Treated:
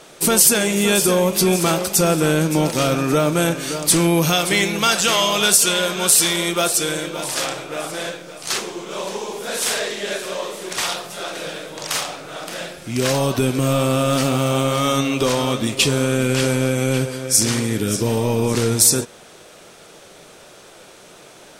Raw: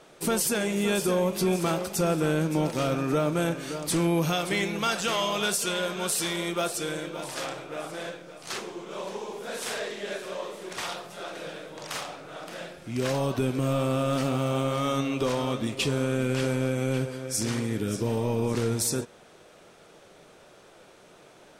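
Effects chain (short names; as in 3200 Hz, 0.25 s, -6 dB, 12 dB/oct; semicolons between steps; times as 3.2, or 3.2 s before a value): high shelf 3300 Hz +8.5 dB; gain +7.5 dB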